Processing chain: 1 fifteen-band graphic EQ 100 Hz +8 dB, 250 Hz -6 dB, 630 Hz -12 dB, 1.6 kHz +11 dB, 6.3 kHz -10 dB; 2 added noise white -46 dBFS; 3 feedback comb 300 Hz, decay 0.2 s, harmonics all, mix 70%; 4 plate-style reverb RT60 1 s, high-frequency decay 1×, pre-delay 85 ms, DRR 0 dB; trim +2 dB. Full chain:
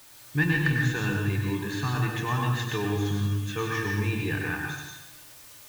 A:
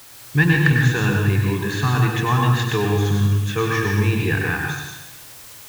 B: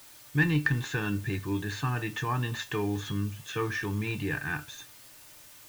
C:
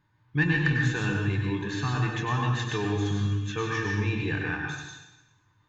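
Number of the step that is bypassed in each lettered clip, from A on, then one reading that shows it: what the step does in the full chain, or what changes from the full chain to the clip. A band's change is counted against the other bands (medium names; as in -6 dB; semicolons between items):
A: 3, 125 Hz band +2.0 dB; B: 4, momentary loudness spread change +5 LU; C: 2, 8 kHz band -2.5 dB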